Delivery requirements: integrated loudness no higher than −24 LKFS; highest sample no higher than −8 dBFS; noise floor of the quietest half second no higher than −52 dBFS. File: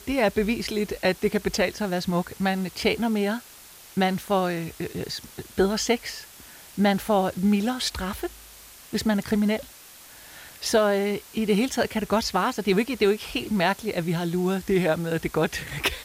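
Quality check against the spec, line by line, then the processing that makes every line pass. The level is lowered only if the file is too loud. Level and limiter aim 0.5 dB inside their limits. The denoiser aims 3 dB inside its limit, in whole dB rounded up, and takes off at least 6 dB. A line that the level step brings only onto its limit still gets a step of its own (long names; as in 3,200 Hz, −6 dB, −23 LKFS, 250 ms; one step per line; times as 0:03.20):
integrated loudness −25.5 LKFS: in spec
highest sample −10.0 dBFS: in spec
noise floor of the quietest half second −47 dBFS: out of spec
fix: broadband denoise 8 dB, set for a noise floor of −47 dBFS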